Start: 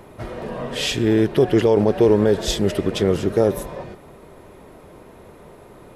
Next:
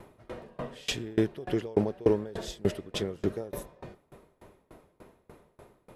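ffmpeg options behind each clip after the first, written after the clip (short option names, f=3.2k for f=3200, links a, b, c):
-af "aeval=exprs='val(0)*pow(10,-28*if(lt(mod(3.4*n/s,1),2*abs(3.4)/1000),1-mod(3.4*n/s,1)/(2*abs(3.4)/1000),(mod(3.4*n/s,1)-2*abs(3.4)/1000)/(1-2*abs(3.4)/1000))/20)':c=same,volume=-4dB"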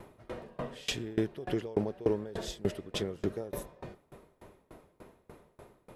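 -af "acompressor=threshold=-33dB:ratio=1.5"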